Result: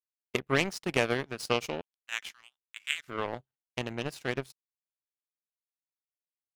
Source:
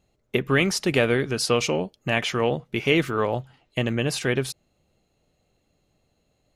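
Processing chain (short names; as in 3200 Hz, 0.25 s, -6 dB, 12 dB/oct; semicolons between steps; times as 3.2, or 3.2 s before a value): 1.81–3.08 inverse Chebyshev high-pass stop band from 550 Hz, stop band 50 dB; power-law curve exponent 2; gain -1 dB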